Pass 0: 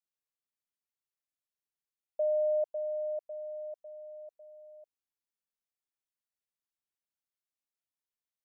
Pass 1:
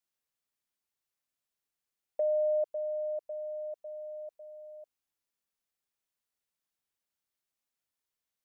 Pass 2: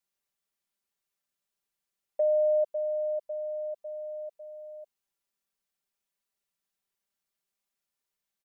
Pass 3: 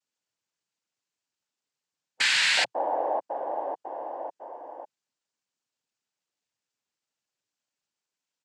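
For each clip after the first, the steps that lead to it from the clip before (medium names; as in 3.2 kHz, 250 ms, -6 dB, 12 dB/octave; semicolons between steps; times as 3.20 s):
dynamic bell 720 Hz, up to -7 dB, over -45 dBFS, Q 2.4; trim +4.5 dB
comb 5.1 ms
integer overflow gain 21 dB; time-frequency box 2.08–2.57 s, 370–740 Hz -27 dB; noise-vocoded speech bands 8; trim +2.5 dB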